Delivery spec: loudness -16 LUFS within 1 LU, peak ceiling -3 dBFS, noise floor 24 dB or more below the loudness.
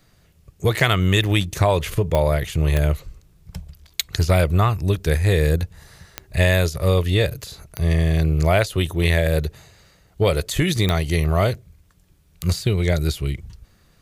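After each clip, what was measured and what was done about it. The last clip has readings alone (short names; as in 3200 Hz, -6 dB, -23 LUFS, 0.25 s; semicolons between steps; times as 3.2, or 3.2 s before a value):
clicks 5; loudness -20.5 LUFS; peak -3.5 dBFS; loudness target -16.0 LUFS
-> de-click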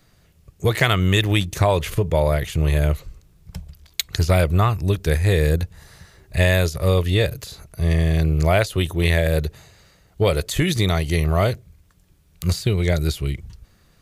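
clicks 0; loudness -20.5 LUFS; peak -3.5 dBFS; loudness target -16.0 LUFS
-> gain +4.5 dB; limiter -3 dBFS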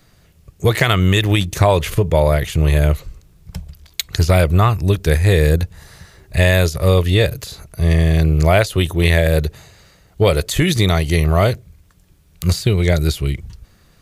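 loudness -16.0 LUFS; peak -3.0 dBFS; noise floor -53 dBFS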